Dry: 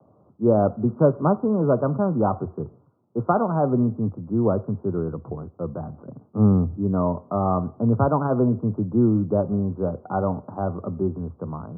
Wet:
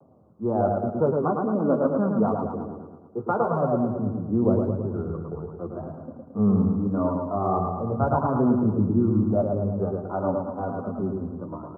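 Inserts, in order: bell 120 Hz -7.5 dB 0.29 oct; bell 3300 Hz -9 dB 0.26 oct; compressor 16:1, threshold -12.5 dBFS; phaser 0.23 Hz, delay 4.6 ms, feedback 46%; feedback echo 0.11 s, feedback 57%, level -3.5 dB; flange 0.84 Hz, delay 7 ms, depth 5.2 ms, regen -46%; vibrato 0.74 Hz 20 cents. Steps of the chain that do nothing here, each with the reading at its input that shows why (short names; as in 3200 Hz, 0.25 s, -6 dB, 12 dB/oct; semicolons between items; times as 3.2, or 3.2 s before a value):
bell 3300 Hz: input band ends at 1400 Hz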